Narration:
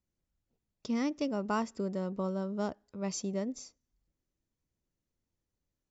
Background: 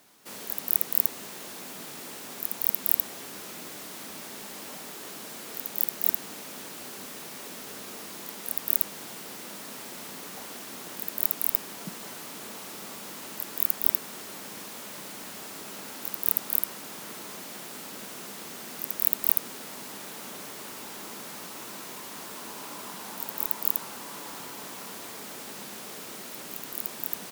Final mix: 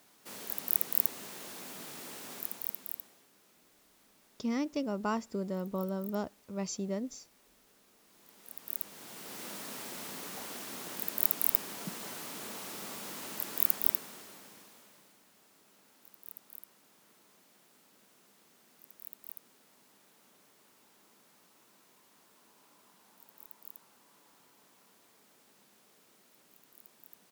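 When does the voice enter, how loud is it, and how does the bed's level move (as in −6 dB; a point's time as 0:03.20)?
3.55 s, −1.0 dB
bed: 0:02.36 −4.5 dB
0:03.28 −24.5 dB
0:07.99 −24.5 dB
0:09.44 −2 dB
0:13.71 −2 dB
0:15.23 −23.5 dB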